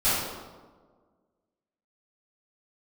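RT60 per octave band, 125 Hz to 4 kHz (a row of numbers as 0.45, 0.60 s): 1.5, 1.8, 1.7, 1.4, 0.95, 0.85 s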